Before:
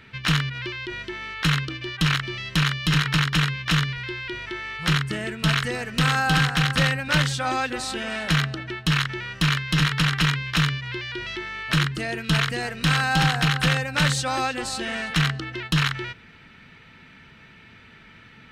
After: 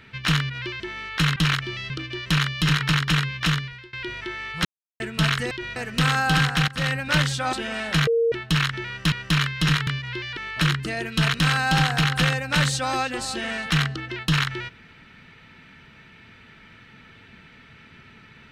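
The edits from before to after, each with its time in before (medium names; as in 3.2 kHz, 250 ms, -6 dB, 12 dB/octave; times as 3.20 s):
0.80–1.05 s: move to 5.76 s
1.61–1.97 s: move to 2.51 s
3.69–4.18 s: fade out, to -22.5 dB
4.90–5.25 s: mute
6.68–6.95 s: fade in, from -20.5 dB
7.53–7.89 s: delete
8.43–8.68 s: bleep 462 Hz -17 dBFS
9.23–9.48 s: loop, 2 plays
9.98–10.66 s: delete
11.16–11.49 s: delete
12.46–12.78 s: delete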